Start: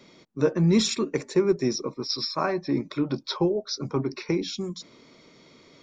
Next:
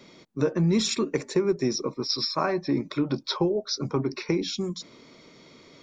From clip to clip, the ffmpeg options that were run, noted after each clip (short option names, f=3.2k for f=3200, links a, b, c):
-af "acompressor=threshold=-23dB:ratio=2.5,volume=2dB"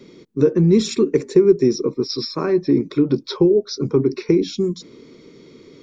-af "lowshelf=f=530:t=q:w=3:g=6.5"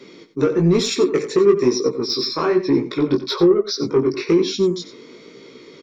-filter_complex "[0:a]asplit=2[a][b];[b]highpass=f=720:p=1,volume=16dB,asoftclip=type=tanh:threshold=-3dB[c];[a][c]amix=inputs=2:normalize=0,lowpass=f=5.2k:p=1,volume=-6dB,flanger=delay=15:depth=5.9:speed=1.1,aecho=1:1:90:0.237"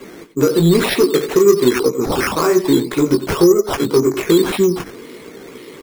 -filter_complex "[0:a]asplit=2[a][b];[b]acompressor=threshold=-24dB:ratio=6,volume=-2dB[c];[a][c]amix=inputs=2:normalize=0,acrusher=samples=9:mix=1:aa=0.000001:lfo=1:lforange=5.4:lforate=1.9,volume=1.5dB"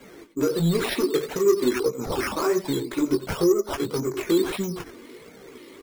-filter_complex "[0:a]asplit=2[a][b];[b]volume=7.5dB,asoftclip=hard,volume=-7.5dB,volume=-10.5dB[c];[a][c]amix=inputs=2:normalize=0,flanger=delay=1.3:depth=2.2:regen=-31:speed=1.5:shape=sinusoidal,volume=-7.5dB"